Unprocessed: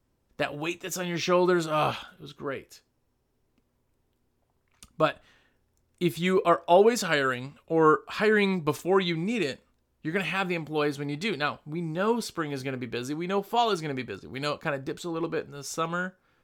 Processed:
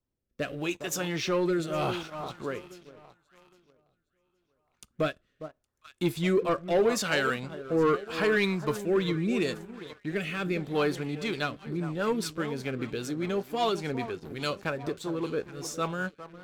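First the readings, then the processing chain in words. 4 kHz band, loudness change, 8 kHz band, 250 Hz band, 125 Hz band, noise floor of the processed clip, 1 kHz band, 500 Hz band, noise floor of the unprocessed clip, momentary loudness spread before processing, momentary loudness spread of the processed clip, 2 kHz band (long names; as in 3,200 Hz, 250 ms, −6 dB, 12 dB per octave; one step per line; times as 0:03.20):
−2.0 dB, −2.5 dB, −0.5 dB, −1.0 dB, −0.5 dB, −78 dBFS, −6.0 dB, −2.5 dB, −73 dBFS, 13 LU, 11 LU, −2.5 dB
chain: delay that swaps between a low-pass and a high-pass 407 ms, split 1,300 Hz, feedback 59%, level −12.5 dB
leveller curve on the samples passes 2
rotating-speaker cabinet horn 0.8 Hz, later 5 Hz, at 0:10.82
level −6.5 dB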